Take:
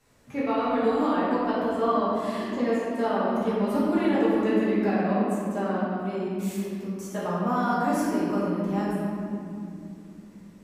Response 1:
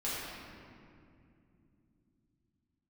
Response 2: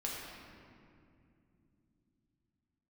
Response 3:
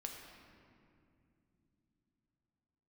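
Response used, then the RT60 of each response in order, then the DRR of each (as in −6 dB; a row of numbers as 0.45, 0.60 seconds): 1; 2.6 s, 2.6 s, non-exponential decay; −10.0, −4.5, 1.0 decibels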